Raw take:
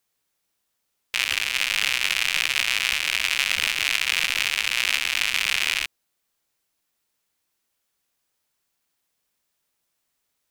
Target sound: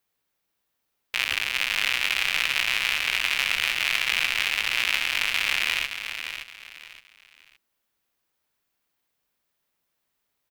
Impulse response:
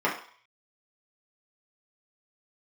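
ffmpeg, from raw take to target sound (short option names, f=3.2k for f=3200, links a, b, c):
-af "equalizer=f=7.7k:t=o:w=1.7:g=-7,aecho=1:1:569|1138|1707:0.376|0.109|0.0316"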